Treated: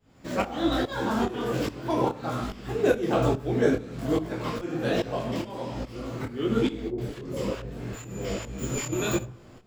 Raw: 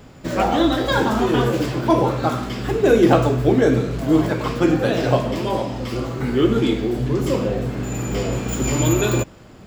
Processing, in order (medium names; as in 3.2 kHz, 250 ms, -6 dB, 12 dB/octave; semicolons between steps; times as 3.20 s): de-hum 64.32 Hz, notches 27; tremolo saw up 2.4 Hz, depth 95%; 6.88–8.93 s: three bands offset in time lows, mids, highs 30/100 ms, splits 230/790 Hz; reverberation RT60 0.60 s, pre-delay 4 ms, DRR 14.5 dB; detune thickener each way 41 cents